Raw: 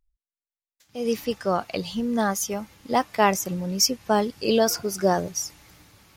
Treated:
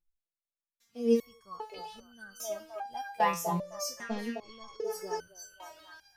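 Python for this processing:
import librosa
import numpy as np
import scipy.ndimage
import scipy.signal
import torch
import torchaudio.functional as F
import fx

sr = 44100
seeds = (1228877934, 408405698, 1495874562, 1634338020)

y = fx.cvsd(x, sr, bps=32000, at=(3.87, 4.84))
y = fx.echo_stepped(y, sr, ms=260, hz=560.0, octaves=0.7, feedback_pct=70, wet_db=0.0)
y = fx.resonator_held(y, sr, hz=2.5, low_hz=170.0, high_hz=1500.0)
y = y * librosa.db_to_amplitude(3.0)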